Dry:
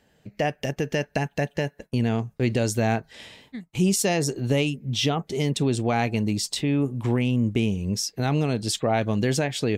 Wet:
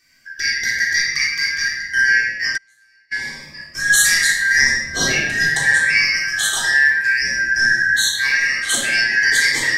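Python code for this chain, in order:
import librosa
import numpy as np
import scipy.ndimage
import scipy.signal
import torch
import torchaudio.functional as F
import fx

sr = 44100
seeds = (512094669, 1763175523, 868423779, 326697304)

y = fx.band_shuffle(x, sr, order='3142')
y = fx.high_shelf(y, sr, hz=2400.0, db=8.0)
y = fx.room_shoebox(y, sr, seeds[0], volume_m3=850.0, walls='mixed', distance_m=3.6)
y = fx.gate_flip(y, sr, shuts_db=-6.0, range_db=-39, at=(2.56, 3.11), fade=0.02)
y = fx.notch_cascade(y, sr, direction='rising', hz=0.82)
y = y * 10.0 ** (-1.5 / 20.0)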